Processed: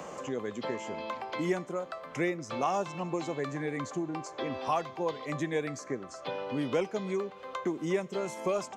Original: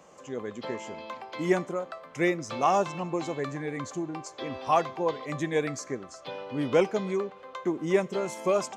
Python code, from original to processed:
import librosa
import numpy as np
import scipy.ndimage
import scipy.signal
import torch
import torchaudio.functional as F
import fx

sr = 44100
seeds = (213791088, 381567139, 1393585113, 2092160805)

y = fx.band_squash(x, sr, depth_pct=70)
y = y * 10.0 ** (-4.0 / 20.0)